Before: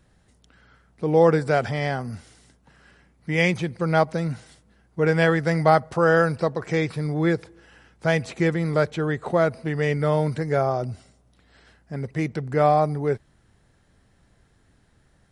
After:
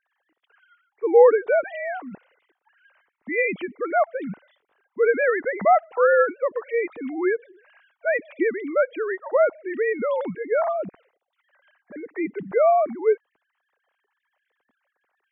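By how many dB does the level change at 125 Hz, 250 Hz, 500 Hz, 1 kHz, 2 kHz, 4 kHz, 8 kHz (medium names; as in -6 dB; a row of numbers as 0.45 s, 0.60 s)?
under -20 dB, -6.5 dB, +2.0 dB, 0.0 dB, 0.0 dB, under -15 dB, under -35 dB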